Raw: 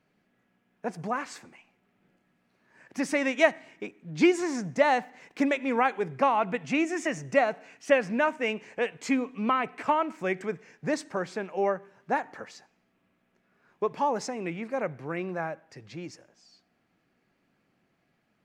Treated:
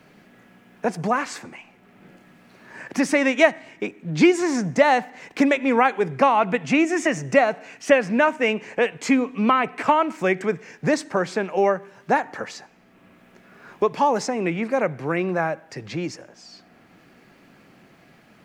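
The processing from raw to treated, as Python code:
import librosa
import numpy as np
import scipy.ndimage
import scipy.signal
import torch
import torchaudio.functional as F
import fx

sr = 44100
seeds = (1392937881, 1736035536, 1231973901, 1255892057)

y = fx.band_squash(x, sr, depth_pct=40)
y = y * 10.0 ** (7.5 / 20.0)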